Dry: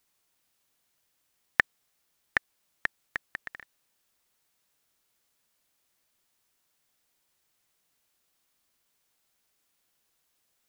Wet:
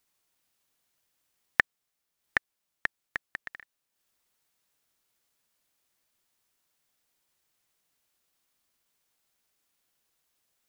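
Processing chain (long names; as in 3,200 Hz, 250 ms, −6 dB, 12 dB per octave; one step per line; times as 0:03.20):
transient designer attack +2 dB, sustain −6 dB
level −2 dB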